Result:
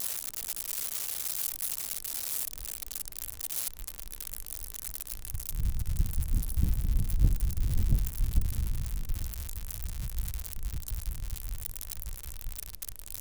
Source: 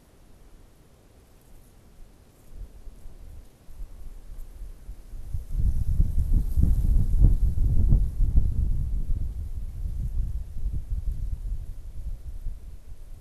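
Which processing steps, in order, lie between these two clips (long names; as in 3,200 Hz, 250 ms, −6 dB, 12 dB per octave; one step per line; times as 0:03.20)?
spike at every zero crossing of −16.5 dBFS
level −6 dB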